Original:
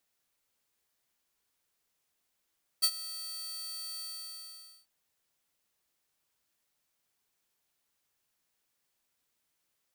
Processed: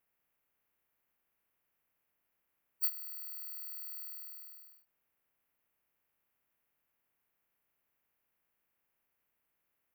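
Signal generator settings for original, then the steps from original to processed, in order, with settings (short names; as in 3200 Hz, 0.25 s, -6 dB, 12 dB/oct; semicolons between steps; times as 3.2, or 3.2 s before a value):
ADSR saw 4540 Hz, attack 19 ms, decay 62 ms, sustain -17.5 dB, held 1.18 s, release 0.864 s -18.5 dBFS
bin magnitudes rounded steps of 30 dB; band shelf 5700 Hz -15.5 dB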